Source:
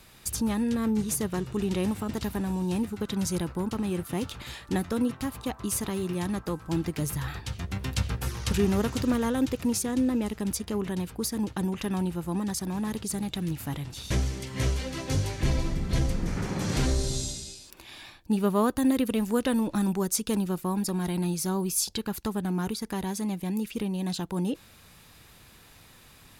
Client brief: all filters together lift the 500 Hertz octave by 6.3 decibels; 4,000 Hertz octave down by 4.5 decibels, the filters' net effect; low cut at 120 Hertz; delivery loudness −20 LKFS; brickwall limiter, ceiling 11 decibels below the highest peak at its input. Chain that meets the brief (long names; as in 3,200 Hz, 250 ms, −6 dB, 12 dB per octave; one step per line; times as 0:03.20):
high-pass filter 120 Hz
parametric band 500 Hz +8 dB
parametric band 4,000 Hz −6 dB
level +10 dB
brickwall limiter −9.5 dBFS